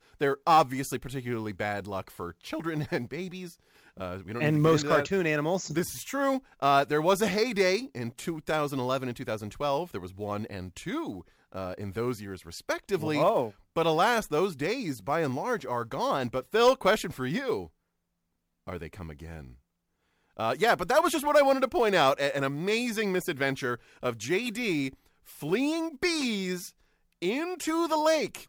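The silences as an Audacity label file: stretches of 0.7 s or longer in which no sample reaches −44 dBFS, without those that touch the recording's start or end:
17.660000	18.670000	silence
19.510000	20.370000	silence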